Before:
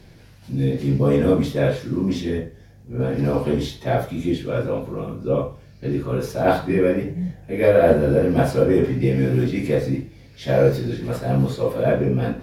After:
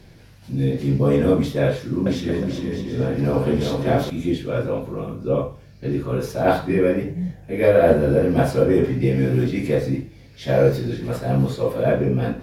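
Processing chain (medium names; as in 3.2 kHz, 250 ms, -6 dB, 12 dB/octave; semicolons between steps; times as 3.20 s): 1.68–4.10 s: bouncing-ball echo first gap 380 ms, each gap 0.6×, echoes 5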